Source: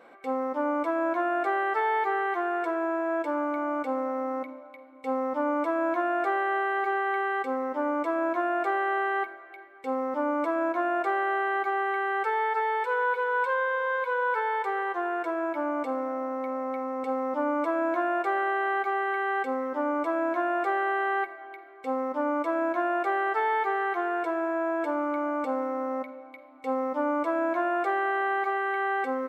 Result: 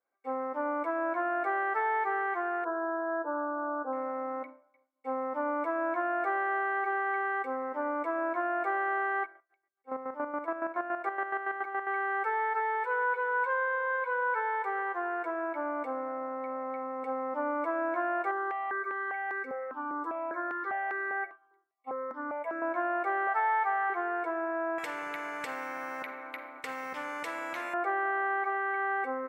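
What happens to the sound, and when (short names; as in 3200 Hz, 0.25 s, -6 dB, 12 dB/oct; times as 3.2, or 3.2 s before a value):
2.64–3.93 brick-wall FIR band-pass 200–1700 Hz
9.21–11.87 chopper 7.1 Hz, depth 60%, duty 35%
18.31–22.62 step phaser 5 Hz 630–3200 Hz
23.27–23.9 resonant low shelf 490 Hz -6.5 dB, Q 3
24.78–27.74 spectral compressor 4:1
whole clip: HPF 360 Hz 6 dB/oct; expander -36 dBFS; resonant high shelf 2600 Hz -8.5 dB, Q 1.5; gain -3.5 dB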